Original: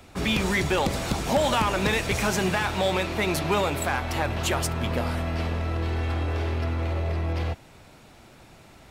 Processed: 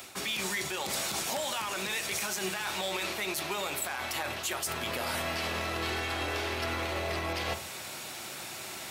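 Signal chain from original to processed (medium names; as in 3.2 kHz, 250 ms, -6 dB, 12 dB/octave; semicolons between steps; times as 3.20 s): in parallel at +1 dB: gain riding; on the sum: high-pass 84 Hz; tilt EQ +3.5 dB/octave; reverberation RT60 0.45 s, pre-delay 3 ms, DRR 10 dB; reverse; compression 4:1, threshold -30 dBFS, peak gain reduction 17 dB; reverse; peak limiter -22.5 dBFS, peak gain reduction 8.5 dB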